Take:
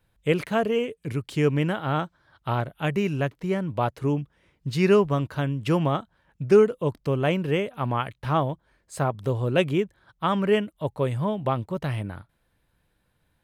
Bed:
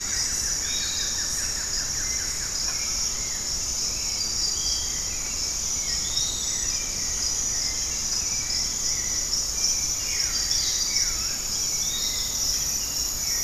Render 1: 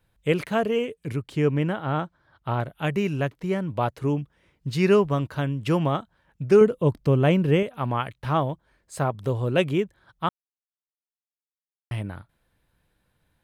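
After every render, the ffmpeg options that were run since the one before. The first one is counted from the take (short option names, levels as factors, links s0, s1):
-filter_complex "[0:a]asettb=1/sr,asplit=3[s0][s1][s2];[s0]atrim=end=1.164[s3];[s1]atrim=start=1.16:end=2.6,asetpts=PTS-STARTPTS,afade=t=in:d=0.004:c=qsin,afade=t=out:st=1.436:d=0.004:c=qsin,highshelf=f=2700:g=-7.5[s4];[s2]atrim=start=2.596[s5];[s3][s4]acrossfade=d=0.004:c1=hsin:c2=qsin[s6];[s6][s5]acrossfade=d=0.004:c1=qsin:c2=hsin,asettb=1/sr,asplit=3[s7][s8][s9];[s7]atrim=end=6.614[s10];[s8]atrim=start=6.61:end=7.63,asetpts=PTS-STARTPTS,afade=t=in:d=0.004:c=qsin,afade=t=out:st=1.016:d=0.004:c=qsin,lowshelf=f=390:g=7[s11];[s9]atrim=start=7.626[s12];[s10][s11]acrossfade=d=0.004:c1=hsin:c2=qsin[s13];[s13][s12]acrossfade=d=0.004:c1=qsin:c2=hsin,asplit=3[s14][s15][s16];[s14]atrim=end=10.29,asetpts=PTS-STARTPTS,afade=t=out:st=10.286:d=0.004:c=hsin[s17];[s15]atrim=start=10.29:end=11.91,asetpts=PTS-STARTPTS,volume=0[s18];[s16]atrim=start=11.91,asetpts=PTS-STARTPTS,afade=t=in:d=0.004:c=hsin[s19];[s17][s18][s19]concat=n=3:v=0:a=1"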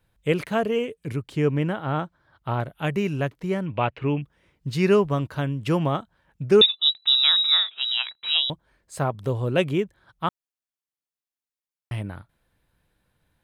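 -filter_complex "[0:a]asettb=1/sr,asplit=3[s0][s1][s2];[s0]atrim=end=3.664[s3];[s1]atrim=start=3.66:end=4.22,asetpts=PTS-STARTPTS,afade=t=in:d=0.004:c=qsin,afade=t=out:st=0.556:d=0.004:c=qsin,lowpass=f=2600:t=q:w=4[s4];[s2]atrim=start=4.216[s5];[s3][s4]acrossfade=d=0.004:c1=hsin:c2=qsin[s6];[s6][s5]acrossfade=d=0.004:c1=qsin:c2=hsin,asettb=1/sr,asplit=3[s7][s8][s9];[s7]atrim=end=6.614[s10];[s8]atrim=start=6.61:end=8.5,asetpts=PTS-STARTPTS,afade=t=in:d=0.004:c=qsin,afade=t=out:st=1.886:d=0.004:c=qsin,lowpass=f=3400:t=q:w=0.5098,lowpass=f=3400:t=q:w=0.6013,lowpass=f=3400:t=q:w=0.9,lowpass=f=3400:t=q:w=2.563,afreqshift=-4000[s11];[s9]atrim=start=8.496[s12];[s10][s11]acrossfade=d=0.004:c1=hsin:c2=qsin[s13];[s13][s12]acrossfade=d=0.004:c1=qsin:c2=hsin"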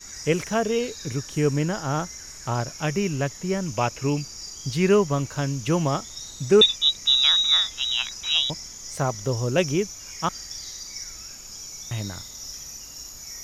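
-filter_complex "[1:a]volume=0.237[s0];[0:a][s0]amix=inputs=2:normalize=0"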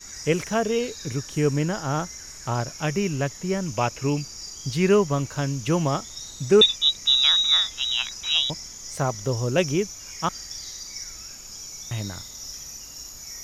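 -af anull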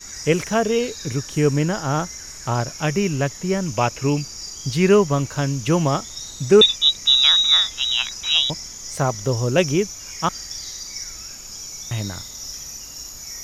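-af "volume=1.58,alimiter=limit=0.708:level=0:latency=1"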